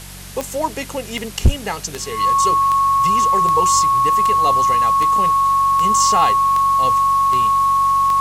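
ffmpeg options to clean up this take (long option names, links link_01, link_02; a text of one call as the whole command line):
ffmpeg -i in.wav -af "adeclick=threshold=4,bandreject=frequency=47:width_type=h:width=4,bandreject=frequency=94:width_type=h:width=4,bandreject=frequency=141:width_type=h:width=4,bandreject=frequency=188:width_type=h:width=4,bandreject=frequency=1100:width=30,afwtdn=0.016" out.wav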